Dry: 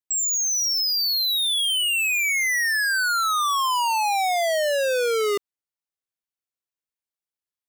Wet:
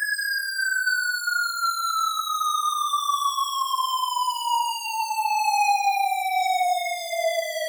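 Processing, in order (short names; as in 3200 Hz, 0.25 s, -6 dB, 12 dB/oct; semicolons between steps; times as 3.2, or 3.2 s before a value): frequency shift -21 Hz; chorus 0.79 Hz, delay 20 ms, depth 5.4 ms; Paulstretch 4.5×, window 0.05 s, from 2.79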